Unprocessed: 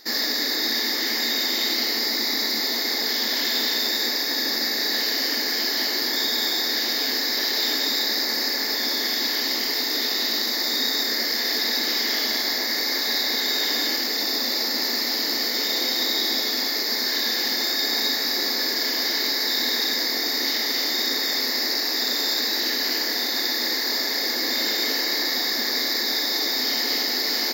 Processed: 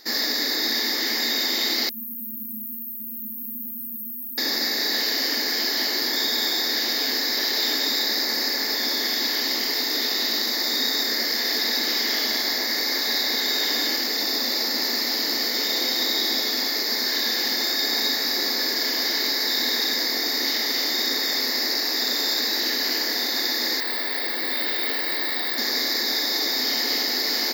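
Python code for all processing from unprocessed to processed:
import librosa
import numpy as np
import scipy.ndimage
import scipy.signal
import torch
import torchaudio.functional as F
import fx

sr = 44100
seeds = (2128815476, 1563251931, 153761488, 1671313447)

y = fx.chain(x, sr, fx.brickwall_bandstop(low_hz=250.0, high_hz=9000.0),
    fx.echo_feedback(ms=73, feedback_pct=25, wet_db=-4.5), at=(1.89, 4.38))
y = fx.chain(y, sr, fx.lowpass(hz=3900.0, slope=24),
    fx.low_shelf(hz=290.0, db=-7.0),
    fx.resample_bad(factor=2, down='filtered', up='zero_stuff'), at=(23.8, 25.58))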